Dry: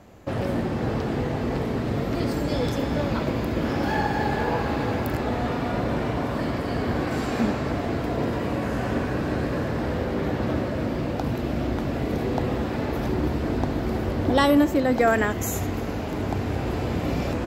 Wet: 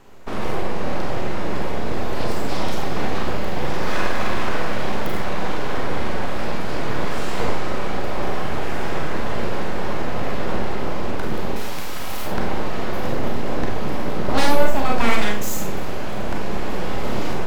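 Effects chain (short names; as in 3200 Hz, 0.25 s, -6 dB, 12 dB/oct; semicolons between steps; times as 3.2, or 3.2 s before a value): 11.56–12.26 RIAA curve recording; full-wave rectifier; Schroeder reverb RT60 0.37 s, combs from 30 ms, DRR 1.5 dB; gain +1.5 dB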